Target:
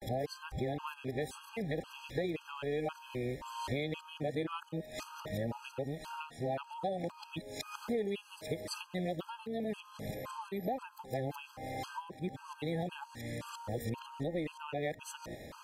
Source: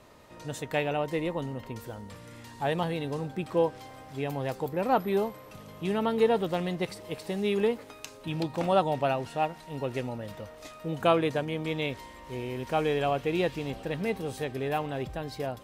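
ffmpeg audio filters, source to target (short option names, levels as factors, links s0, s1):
-af "areverse,acompressor=threshold=0.01:ratio=10,afftfilt=real='re*gt(sin(2*PI*1.9*pts/sr)*(1-2*mod(floor(b*sr/1024/830),2)),0)':imag='im*gt(sin(2*PI*1.9*pts/sr)*(1-2*mod(floor(b*sr/1024/830),2)),0)':win_size=1024:overlap=0.75,volume=2.51"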